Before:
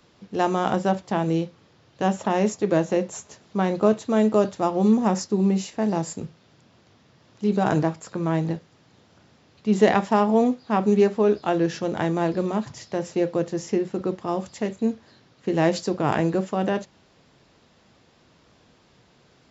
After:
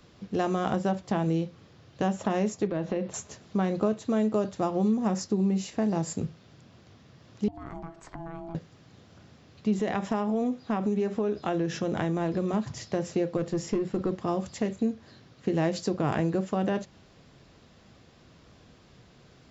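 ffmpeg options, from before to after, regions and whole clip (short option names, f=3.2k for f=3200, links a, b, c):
-filter_complex "[0:a]asettb=1/sr,asplit=3[a][b][c];[a]atrim=end=2.674[d];[b]atrim=start=2.67:end=3.14,asetpts=PTS-STARTPTS,afade=t=in:d=0.004:c=qsin,afade=t=out:st=0.466:d=0.004:c=qsin,lowpass=f=4.4k:w=0.5412,lowpass=f=4.4k:w=1.3066,acompressor=threshold=-27dB:ratio=2.5:attack=3.2:release=140:knee=1:detection=peak[e];[c]atrim=start=3.136[f];[d][e]acrossfade=d=0.004:c1=hsin:c2=qsin[g];[g][f]acrossfade=d=0.004:c1=qsin:c2=hsin,asettb=1/sr,asplit=3[h][i][j];[h]atrim=end=7.484[k];[i]atrim=start=7.48:end=8.55,asetpts=PTS-STARTPTS,afade=t=in:d=0.004:c=qsin,afade=t=out:st=1.066:d=0.004:c=qsin,lowpass=f=2.4k:p=1,acompressor=threshold=-36dB:ratio=6:attack=3.2:release=140:knee=1:detection=peak,aeval=exprs='val(0)*sin(2*PI*500*n/s)':c=same[l];[j]atrim=start=8.546[m];[k][l]acrossfade=d=0.004:c1=hsin:c2=qsin[n];[n][m]acrossfade=d=0.004:c1=qsin:c2=hsin,asettb=1/sr,asplit=3[o][p][q];[o]atrim=end=9.794[r];[p]atrim=start=9.79:end=12.54,asetpts=PTS-STARTPTS,afade=t=in:d=0.004:c=qsin,afade=t=out:st=2.746:d=0.004:c=qsin,highpass=60,bandreject=f=4.5k:w=10,acompressor=threshold=-24dB:ratio=2:attack=3.2:release=140:knee=1:detection=peak[s];[q]atrim=start=12.536[t];[r][s]acrossfade=d=0.004:c1=hsin:c2=qsin[u];[u][t]acrossfade=d=0.004:c1=qsin:c2=hsin,asettb=1/sr,asplit=3[v][w][x];[v]atrim=end=13.374[y];[w]atrim=start=13.37:end=14.12,asetpts=PTS-STARTPTS,afade=t=in:d=0.004:c=qsin,afade=t=out:st=0.746:d=0.004:c=qsin,bandreject=f=6.2k:w=12,aeval=exprs='(tanh(7.94*val(0)+0.05)-tanh(0.05))/7.94':c=same[z];[x]atrim=start=14.116[aa];[y][z]acrossfade=d=0.004:c1=hsin:c2=qsin[ab];[ab][aa]acrossfade=d=0.004:c1=qsin:c2=hsin,lowshelf=f=160:g=8,bandreject=f=900:w=15,acompressor=threshold=-25dB:ratio=3"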